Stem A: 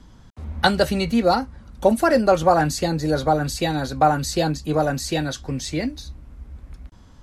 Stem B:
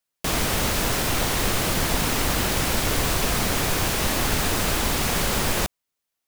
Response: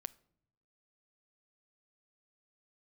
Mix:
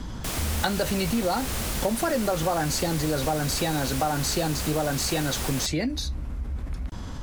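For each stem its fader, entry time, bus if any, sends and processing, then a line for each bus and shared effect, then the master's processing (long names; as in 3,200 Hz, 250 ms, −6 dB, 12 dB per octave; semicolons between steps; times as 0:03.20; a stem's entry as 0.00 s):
−5.0 dB, 0.00 s, no send, envelope flattener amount 50%
−8.5 dB, 0.00 s, no send, parametric band 10,000 Hz +5 dB 1.9 octaves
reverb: not used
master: downward compressor 3 to 1, threshold −23 dBFS, peak gain reduction 7 dB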